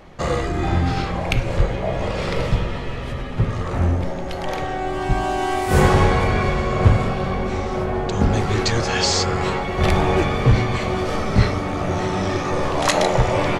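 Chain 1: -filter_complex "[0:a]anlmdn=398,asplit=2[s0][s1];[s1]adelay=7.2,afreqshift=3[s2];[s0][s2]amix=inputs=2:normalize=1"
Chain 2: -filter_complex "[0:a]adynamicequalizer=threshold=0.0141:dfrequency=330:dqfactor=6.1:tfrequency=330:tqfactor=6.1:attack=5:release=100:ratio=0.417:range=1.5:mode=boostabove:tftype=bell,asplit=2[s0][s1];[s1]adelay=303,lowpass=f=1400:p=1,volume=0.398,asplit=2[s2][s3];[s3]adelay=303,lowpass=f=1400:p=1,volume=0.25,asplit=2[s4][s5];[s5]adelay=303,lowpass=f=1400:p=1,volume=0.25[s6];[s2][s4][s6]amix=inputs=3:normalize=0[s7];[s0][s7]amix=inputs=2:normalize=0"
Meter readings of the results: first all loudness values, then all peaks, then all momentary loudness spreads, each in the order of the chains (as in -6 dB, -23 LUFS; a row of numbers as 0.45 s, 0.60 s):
-24.0 LUFS, -20.5 LUFS; -5.0 dBFS, -1.5 dBFS; 8 LU, 7 LU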